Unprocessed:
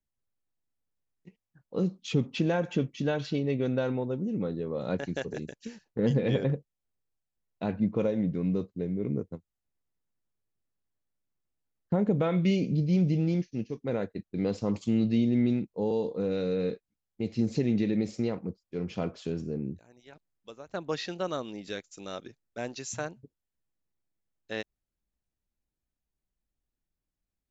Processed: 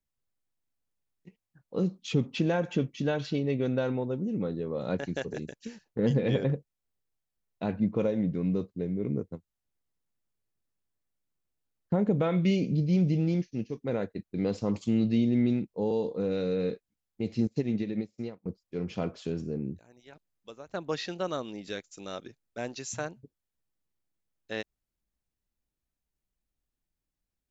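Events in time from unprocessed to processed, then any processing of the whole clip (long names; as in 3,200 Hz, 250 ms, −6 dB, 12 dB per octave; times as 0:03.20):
0:17.47–0:18.46: expander for the loud parts 2.5 to 1, over −43 dBFS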